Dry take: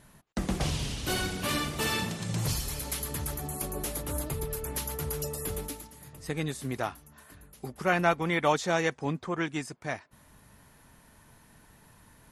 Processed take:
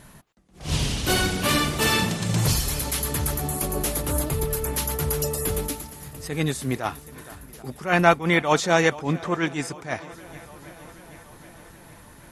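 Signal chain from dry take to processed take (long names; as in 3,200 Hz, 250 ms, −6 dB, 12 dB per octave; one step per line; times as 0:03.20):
feedback echo with a long and a short gap by turns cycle 779 ms, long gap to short 1.5 to 1, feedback 57%, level −22.5 dB
level that may rise only so fast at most 170 dB per second
level +8.5 dB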